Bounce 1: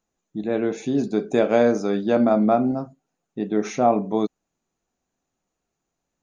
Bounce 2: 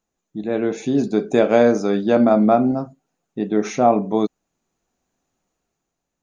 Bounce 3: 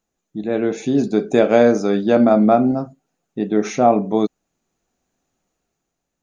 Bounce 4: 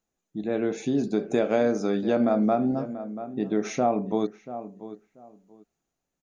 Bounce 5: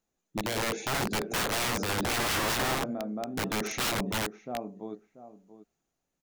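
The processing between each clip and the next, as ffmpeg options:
ffmpeg -i in.wav -af "dynaudnorm=framelen=100:gausssize=13:maxgain=5dB" out.wav
ffmpeg -i in.wav -af "equalizer=frequency=1000:width=4.2:gain=-3,volume=1.5dB" out.wav
ffmpeg -i in.wav -filter_complex "[0:a]asplit=2[link_01][link_02];[link_02]adelay=686,lowpass=frequency=1700:poles=1,volume=-16dB,asplit=2[link_03][link_04];[link_04]adelay=686,lowpass=frequency=1700:poles=1,volume=0.21[link_05];[link_01][link_03][link_05]amix=inputs=3:normalize=0,acompressor=threshold=-16dB:ratio=2,volume=-5.5dB" out.wav
ffmpeg -i in.wav -af "aeval=exprs='(mod(15.8*val(0)+1,2)-1)/15.8':channel_layout=same" out.wav

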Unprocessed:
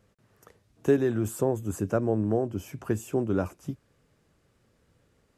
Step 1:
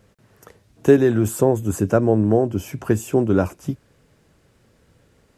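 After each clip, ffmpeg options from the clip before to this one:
ffmpeg -i in.wav -af "bandreject=frequency=1200:width=19,volume=9dB" out.wav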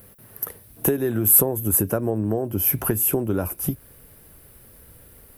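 ffmpeg -i in.wav -af "acompressor=threshold=-23dB:ratio=10,asubboost=boost=2.5:cutoff=83,aexciter=amount=13.7:drive=7.2:freq=10000,volume=4.5dB" out.wav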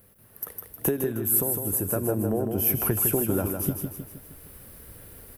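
ffmpeg -i in.wav -filter_complex "[0:a]asplit=2[link_01][link_02];[link_02]aecho=0:1:156|312|468|624|780|936:0.501|0.236|0.111|0.052|0.0245|0.0115[link_03];[link_01][link_03]amix=inputs=2:normalize=0,dynaudnorm=framelen=300:gausssize=3:maxgain=10dB,volume=-8.5dB" out.wav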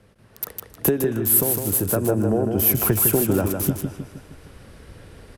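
ffmpeg -i in.wav -filter_complex "[0:a]acrossover=split=150|890|7300[link_01][link_02][link_03][link_04];[link_03]aecho=1:1:271|542|813|1084|1355:0.224|0.119|0.0629|0.0333|0.0177[link_05];[link_04]aeval=exprs='val(0)*gte(abs(val(0)),0.0299)':channel_layout=same[link_06];[link_01][link_02][link_05][link_06]amix=inputs=4:normalize=0,volume=5.5dB" out.wav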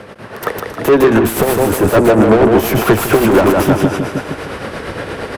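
ffmpeg -i in.wav -filter_complex "[0:a]asplit=2[link_01][link_02];[link_02]highpass=frequency=720:poles=1,volume=35dB,asoftclip=type=tanh:threshold=-2.5dB[link_03];[link_01][link_03]amix=inputs=2:normalize=0,lowpass=frequency=1300:poles=1,volume=-6dB,tremolo=f=8.6:d=0.44,volume=3.5dB" out.wav

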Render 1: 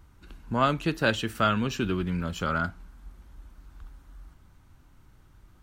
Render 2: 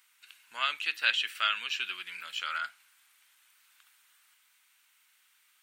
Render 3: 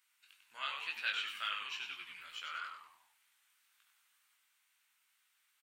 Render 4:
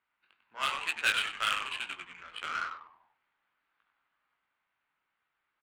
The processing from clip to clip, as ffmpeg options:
ffmpeg -i in.wav -filter_complex "[0:a]acrossover=split=5000[link_01][link_02];[link_02]acompressor=threshold=-60dB:ratio=4:attack=1:release=60[link_03];[link_01][link_03]amix=inputs=2:normalize=0,aexciter=amount=2.3:drive=3.7:freq=7900,highpass=frequency=2400:width_type=q:width=1.7,volume=2dB" out.wav
ffmpeg -i in.wav -filter_complex "[0:a]flanger=delay=17.5:depth=4.5:speed=2.1,asplit=2[link_01][link_02];[link_02]asplit=5[link_03][link_04][link_05][link_06][link_07];[link_03]adelay=97,afreqshift=-110,volume=-6dB[link_08];[link_04]adelay=194,afreqshift=-220,volume=-13.7dB[link_09];[link_05]adelay=291,afreqshift=-330,volume=-21.5dB[link_10];[link_06]adelay=388,afreqshift=-440,volume=-29.2dB[link_11];[link_07]adelay=485,afreqshift=-550,volume=-37dB[link_12];[link_08][link_09][link_10][link_11][link_12]amix=inputs=5:normalize=0[link_13];[link_01][link_13]amix=inputs=2:normalize=0,volume=-7dB" out.wav
ffmpeg -i in.wav -filter_complex "[0:a]asplit=2[link_01][link_02];[link_02]asoftclip=type=tanh:threshold=-34.5dB,volume=-10.5dB[link_03];[link_01][link_03]amix=inputs=2:normalize=0,aresample=11025,aresample=44100,adynamicsmooth=sensitivity=7:basefreq=990,volume=8dB" out.wav

